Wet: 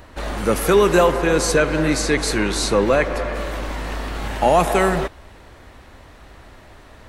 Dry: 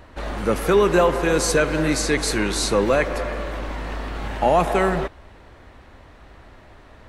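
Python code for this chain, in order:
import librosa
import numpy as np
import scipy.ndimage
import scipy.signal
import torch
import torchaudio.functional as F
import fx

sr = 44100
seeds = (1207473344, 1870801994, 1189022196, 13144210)

y = fx.high_shelf(x, sr, hz=5600.0, db=fx.steps((0.0, 8.5), (1.11, -2.5), (3.34, 10.5)))
y = F.gain(torch.from_numpy(y), 2.0).numpy()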